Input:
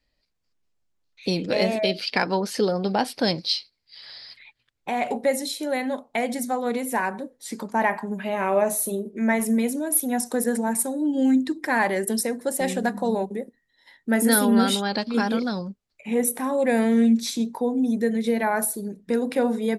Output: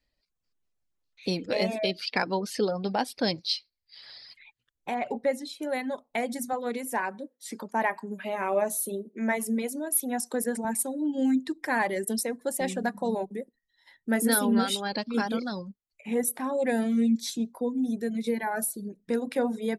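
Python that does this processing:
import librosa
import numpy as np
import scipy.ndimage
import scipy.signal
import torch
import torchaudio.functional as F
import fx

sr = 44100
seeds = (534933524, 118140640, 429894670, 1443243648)

y = fx.lowpass(x, sr, hz=2700.0, slope=6, at=(4.94, 5.62))
y = fx.highpass(y, sr, hz=190.0, slope=12, at=(6.53, 10.65))
y = fx.notch_cascade(y, sr, direction='falling', hz=1.7, at=(16.7, 18.89), fade=0.02)
y = fx.dereverb_blind(y, sr, rt60_s=0.61)
y = F.gain(torch.from_numpy(y), -4.0).numpy()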